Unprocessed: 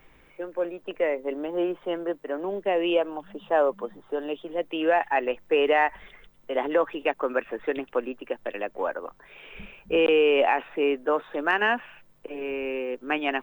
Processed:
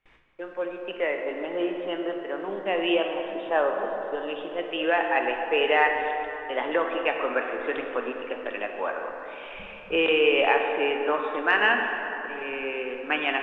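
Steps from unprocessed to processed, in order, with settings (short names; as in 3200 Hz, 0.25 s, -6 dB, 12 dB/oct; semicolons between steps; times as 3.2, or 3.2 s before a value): gate with hold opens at -44 dBFS; LPF 4200 Hz 12 dB/oct; tilt shelf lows -5 dB, about 1100 Hz; plate-style reverb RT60 3.5 s, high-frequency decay 0.5×, DRR 2.5 dB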